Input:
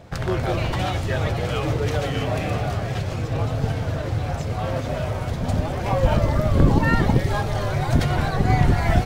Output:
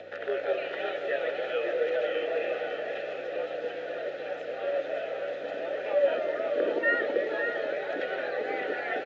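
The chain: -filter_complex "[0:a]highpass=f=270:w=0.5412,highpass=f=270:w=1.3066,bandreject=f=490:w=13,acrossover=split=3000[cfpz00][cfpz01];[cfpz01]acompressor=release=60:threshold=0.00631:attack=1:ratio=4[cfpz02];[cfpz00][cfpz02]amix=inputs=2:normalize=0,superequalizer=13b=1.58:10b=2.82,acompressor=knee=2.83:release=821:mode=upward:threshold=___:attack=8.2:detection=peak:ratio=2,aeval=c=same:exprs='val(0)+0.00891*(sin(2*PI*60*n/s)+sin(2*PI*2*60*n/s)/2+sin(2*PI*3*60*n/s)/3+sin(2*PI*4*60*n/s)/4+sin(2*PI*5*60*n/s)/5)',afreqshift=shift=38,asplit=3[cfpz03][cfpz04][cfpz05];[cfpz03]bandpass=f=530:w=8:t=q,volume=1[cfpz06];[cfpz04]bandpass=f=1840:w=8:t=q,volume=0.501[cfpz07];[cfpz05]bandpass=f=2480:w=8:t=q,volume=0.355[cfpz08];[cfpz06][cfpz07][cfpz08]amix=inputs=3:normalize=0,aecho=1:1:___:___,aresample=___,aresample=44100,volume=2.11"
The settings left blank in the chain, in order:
0.0398, 557, 0.447, 16000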